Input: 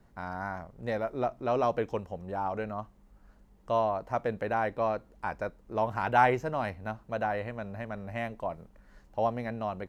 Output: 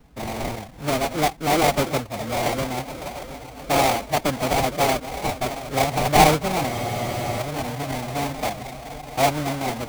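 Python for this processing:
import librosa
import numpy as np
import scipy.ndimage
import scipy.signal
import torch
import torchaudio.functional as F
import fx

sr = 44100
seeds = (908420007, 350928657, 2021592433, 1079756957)

y = fx.reverse_delay_fb(x, sr, ms=347, feedback_pct=79, wet_db=-13)
y = fx.sample_hold(y, sr, seeds[0], rate_hz=1500.0, jitter_pct=20)
y = fx.pitch_keep_formants(y, sr, semitones=3.5)
y = fx.spec_freeze(y, sr, seeds[1], at_s=6.72, hold_s=0.68)
y = y * 10.0 ** (8.5 / 20.0)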